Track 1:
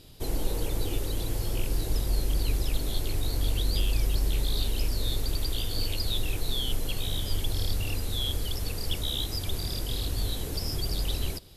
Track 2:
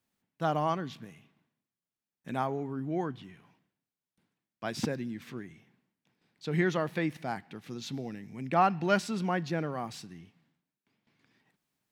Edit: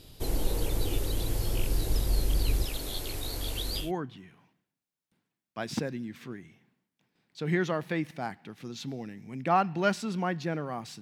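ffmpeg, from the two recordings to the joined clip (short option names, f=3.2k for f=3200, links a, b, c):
-filter_complex "[0:a]asettb=1/sr,asplit=3[a][b][c];[a]atrim=end=2.654[d];[b]atrim=start=2.65:end=3.92,asetpts=PTS-STARTPTS,afade=t=in:d=0.004:c=qsin,afade=t=out:st=1.266:d=0.004:c=qsin,lowshelf=f=240:g=-9.5[e];[c]atrim=start=3.916[f];[d][e]acrossfade=d=0.004:c1=hsin:c2=qsin[g];[g][f]acrossfade=d=0.004:c1=qsin:c2=hsin,apad=whole_dur=11.01,atrim=end=11.01,atrim=end=3.92,asetpts=PTS-STARTPTS[h];[1:a]atrim=start=2.82:end=10.07,asetpts=PTS-STARTPTS[i];[h][i]acrossfade=d=0.16:c1=tri:c2=tri"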